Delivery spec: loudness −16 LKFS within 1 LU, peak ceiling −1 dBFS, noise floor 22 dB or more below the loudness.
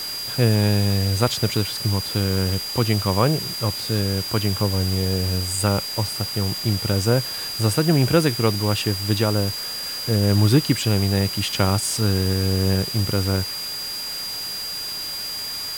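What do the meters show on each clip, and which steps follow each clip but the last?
interfering tone 4,800 Hz; level of the tone −28 dBFS; background noise floor −30 dBFS; target noise floor −44 dBFS; integrated loudness −21.5 LKFS; sample peak −3.5 dBFS; target loudness −16.0 LKFS
→ notch filter 4,800 Hz, Q 30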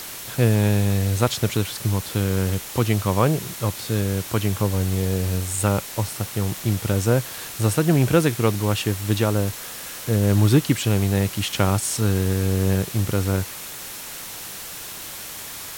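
interfering tone none found; background noise floor −35 dBFS; target noise floor −45 dBFS
→ noise reduction from a noise print 10 dB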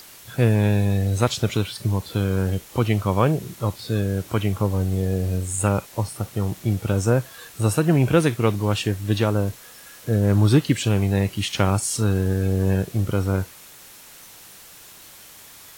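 background noise floor −45 dBFS; integrated loudness −22.0 LKFS; sample peak −4.0 dBFS; target loudness −16.0 LKFS
→ level +6 dB
brickwall limiter −1 dBFS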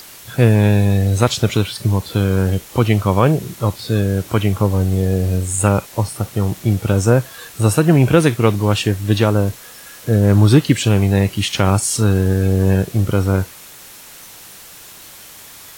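integrated loudness −16.5 LKFS; sample peak −1.0 dBFS; background noise floor −39 dBFS

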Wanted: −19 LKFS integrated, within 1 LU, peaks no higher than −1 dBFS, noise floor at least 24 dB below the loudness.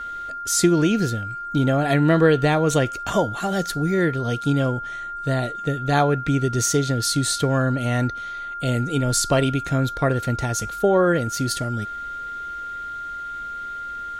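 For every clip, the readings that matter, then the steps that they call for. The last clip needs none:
crackle rate 28 per second; interfering tone 1,400 Hz; level of the tone −29 dBFS; integrated loudness −22.0 LKFS; sample peak −5.0 dBFS; target loudness −19.0 LKFS
→ click removal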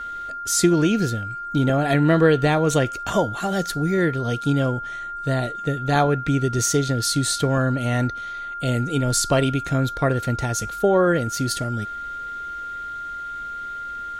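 crackle rate 0.14 per second; interfering tone 1,400 Hz; level of the tone −29 dBFS
→ notch filter 1,400 Hz, Q 30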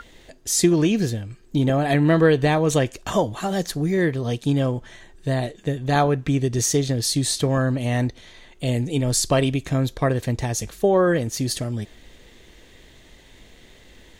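interfering tone none found; integrated loudness −22.0 LKFS; sample peak −5.5 dBFS; target loudness −19.0 LKFS
→ level +3 dB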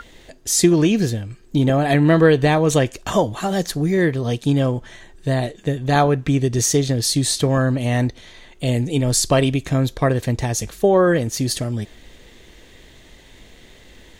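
integrated loudness −19.0 LKFS; sample peak −2.5 dBFS; background noise floor −47 dBFS

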